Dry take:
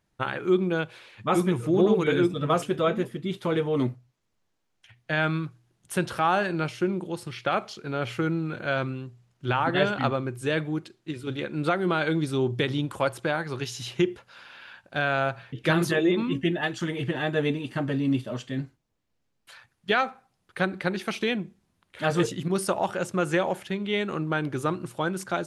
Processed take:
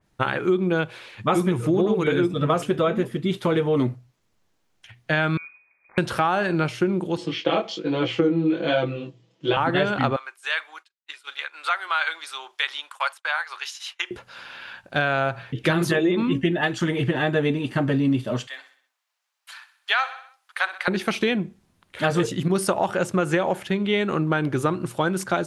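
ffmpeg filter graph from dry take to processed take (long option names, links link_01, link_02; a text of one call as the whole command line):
ffmpeg -i in.wav -filter_complex "[0:a]asettb=1/sr,asplit=3[link_01][link_02][link_03];[link_01]atrim=end=5.374[link_04];[link_02]atrim=start=5.37:end=5.98,asetpts=PTS-STARTPTS,afade=type=in:duration=0.004:curve=qsin,afade=type=out:start_time=0.606:duration=0.004:curve=qsin,highpass=130,acompressor=threshold=-43dB:ratio=5:attack=3.2:release=140:knee=1:detection=peak,lowpass=frequency=2200:width_type=q:width=0.5098,lowpass=frequency=2200:width_type=q:width=0.6013,lowpass=frequency=2200:width_type=q:width=0.9,lowpass=frequency=2200:width_type=q:width=2.563,afreqshift=-2600[link_05];[link_03]atrim=start=5.976[link_06];[link_04][link_05]acrossfade=duration=0.004:curve1=hsin:curve2=qsin[link_07];[link_07][link_06]acrossfade=duration=0.004:curve1=qsin:curve2=hsin,asettb=1/sr,asplit=3[link_08][link_09][link_10];[link_08]atrim=end=7.174[link_11];[link_09]atrim=start=7.17:end=9.57,asetpts=PTS-STARTPTS,afade=type=in:duration=0.004:curve=qsin,afade=type=out:start_time=2.396:duration=0.004:curve=qsin,highpass=frequency=150:width=0.5412,highpass=frequency=150:width=1.3066,equalizer=frequency=300:width_type=q:width=4:gain=10,equalizer=frequency=500:width_type=q:width=4:gain=9,equalizer=frequency=1400:width_type=q:width=4:gain=-7,equalizer=frequency=3200:width_type=q:width=4:gain=8,lowpass=frequency=6700:width=0.5412,lowpass=frequency=6700:width=1.3066,aecho=1:1:6.1:0.77,atrim=end_sample=105840,flanger=delay=16:depth=7.3:speed=1.2[link_12];[link_10]atrim=start=9.566[link_13];[link_11][link_12]acrossfade=duration=0.004:curve1=hsin:curve2=qsin[link_14];[link_14][link_13]acrossfade=duration=0.004:curve1=qsin:curve2=hsin,asettb=1/sr,asplit=3[link_15][link_16][link_17];[link_15]atrim=end=10.164[link_18];[link_16]atrim=start=10.16:end=14.11,asetpts=PTS-STARTPTS,afade=type=in:duration=0.004:curve=qsin,afade=type=out:start_time=3.946:duration=0.004:curve=qsin,agate=range=-33dB:threshold=-33dB:ratio=3:release=100:detection=peak,highpass=frequency=970:width=0.5412,highpass=frequency=970:width=1.3066,highshelf=frequency=10000:gain=-5.5[link_19];[link_17]atrim=start=14.106[link_20];[link_18][link_19]acrossfade=duration=0.004:curve1=hsin:curve2=qsin[link_21];[link_21][link_20]acrossfade=duration=0.004:curve1=qsin:curve2=hsin,asettb=1/sr,asplit=3[link_22][link_23][link_24];[link_22]atrim=end=18.474[link_25];[link_23]atrim=start=18.47:end=20.88,asetpts=PTS-STARTPTS,afade=type=in:duration=0.004:curve=qsin,afade=type=out:start_time=2.406:duration=0.004:curve=qsin,highpass=frequency=850:width=0.5412,highpass=frequency=850:width=1.3066,aecho=1:1:63|126|189|252|315:0.188|0.0942|0.0471|0.0235|0.0118,atrim=end_sample=106281[link_26];[link_24]atrim=start=20.876[link_27];[link_25][link_26]acrossfade=duration=0.004:curve1=hsin:curve2=qsin[link_28];[link_28][link_27]acrossfade=duration=0.004:curve1=qsin:curve2=hsin,acompressor=threshold=-24dB:ratio=6,adynamicequalizer=threshold=0.00631:dfrequency=2800:dqfactor=0.7:tfrequency=2800:tqfactor=0.7:attack=5:release=100:ratio=0.375:range=1.5:mode=cutabove:tftype=highshelf,volume=7dB" out.wav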